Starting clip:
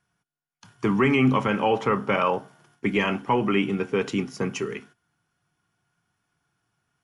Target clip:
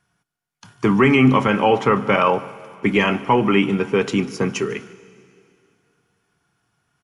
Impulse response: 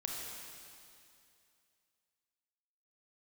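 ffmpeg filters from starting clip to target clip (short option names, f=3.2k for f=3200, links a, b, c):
-filter_complex "[0:a]asplit=2[a][b];[1:a]atrim=start_sample=2205,adelay=148[c];[b][c]afir=irnorm=-1:irlink=0,volume=-19dB[d];[a][d]amix=inputs=2:normalize=0,aresample=32000,aresample=44100,volume=6dB"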